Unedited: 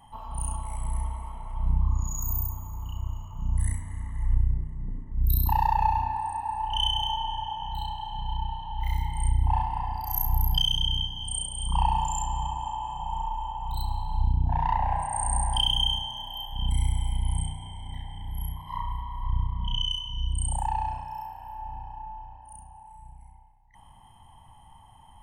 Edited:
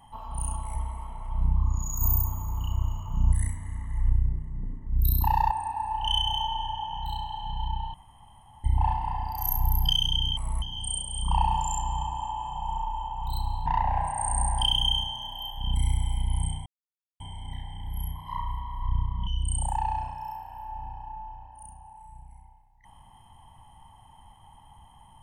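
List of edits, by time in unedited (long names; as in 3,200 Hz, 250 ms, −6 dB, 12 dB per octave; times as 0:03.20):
0:00.75–0:01.00: move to 0:11.06
0:02.26–0:03.58: clip gain +5 dB
0:05.76–0:06.20: remove
0:08.63–0:09.33: fill with room tone
0:14.10–0:14.61: remove
0:17.61: splice in silence 0.54 s
0:19.68–0:20.17: remove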